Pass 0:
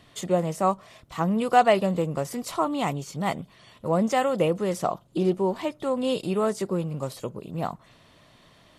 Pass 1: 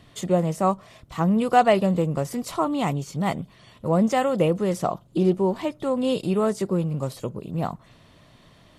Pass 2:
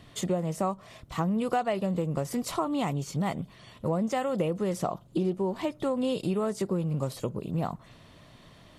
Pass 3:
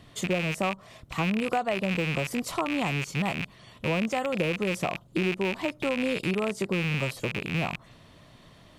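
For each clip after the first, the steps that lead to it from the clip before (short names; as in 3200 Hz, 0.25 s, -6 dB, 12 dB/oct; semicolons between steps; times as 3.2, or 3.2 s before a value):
low shelf 280 Hz +6.5 dB
compressor 5:1, threshold -25 dBFS, peak gain reduction 13 dB
rattling part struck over -39 dBFS, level -20 dBFS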